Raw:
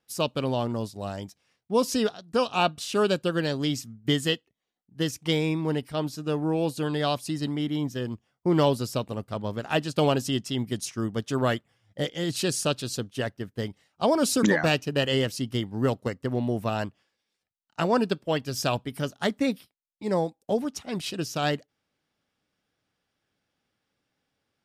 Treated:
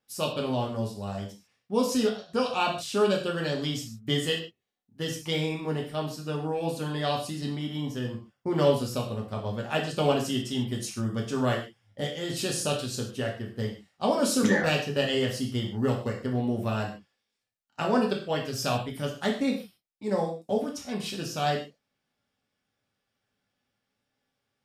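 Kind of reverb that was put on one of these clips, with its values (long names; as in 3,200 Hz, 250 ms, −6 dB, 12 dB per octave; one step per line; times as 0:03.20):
reverb whose tail is shaped and stops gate 170 ms falling, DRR −1 dB
level −5 dB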